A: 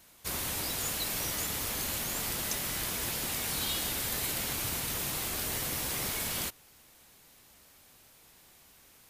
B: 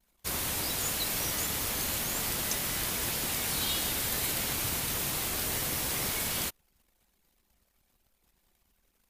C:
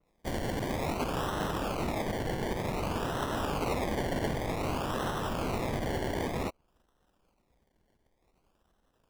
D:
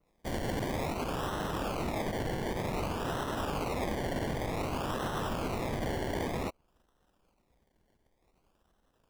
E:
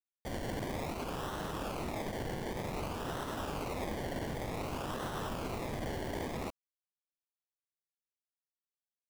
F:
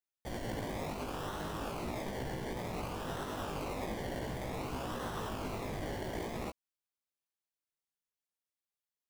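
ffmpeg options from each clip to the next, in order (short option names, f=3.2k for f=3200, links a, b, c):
-af "anlmdn=0.000398,volume=2dB"
-af "acrusher=samples=27:mix=1:aa=0.000001:lfo=1:lforange=16.2:lforate=0.54,adynamicequalizer=threshold=0.00251:dfrequency=3500:dqfactor=0.7:tfrequency=3500:tqfactor=0.7:attack=5:release=100:ratio=0.375:range=2.5:mode=cutabove:tftype=highshelf"
-af "alimiter=level_in=1.5dB:limit=-24dB:level=0:latency=1:release=50,volume=-1.5dB"
-af "acrusher=bits=6:mix=0:aa=0.000001,volume=-4.5dB"
-af "flanger=delay=15.5:depth=4.5:speed=0.44,volume=2dB"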